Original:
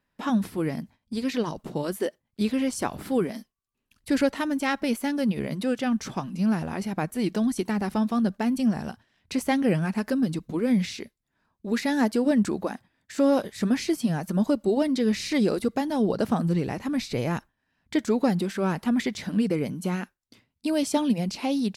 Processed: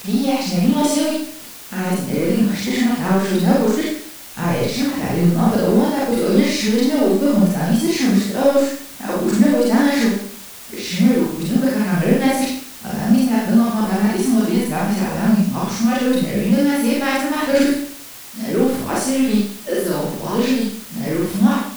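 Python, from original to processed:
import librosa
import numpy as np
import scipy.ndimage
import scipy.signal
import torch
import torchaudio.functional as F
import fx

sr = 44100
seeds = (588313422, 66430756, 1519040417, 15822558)

p1 = x[::-1].copy()
p2 = np.clip(10.0 ** (29.0 / 20.0) * p1, -1.0, 1.0) / 10.0 ** (29.0 / 20.0)
p3 = p1 + F.gain(torch.from_numpy(p2), -5.0).numpy()
p4 = fx.rev_schroeder(p3, sr, rt60_s=0.6, comb_ms=31, drr_db=-5.5)
y = fx.dmg_noise_colour(p4, sr, seeds[0], colour='white', level_db=-37.0)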